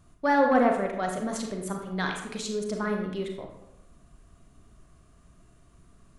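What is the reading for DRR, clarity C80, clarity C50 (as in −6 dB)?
2.5 dB, 7.5 dB, 5.0 dB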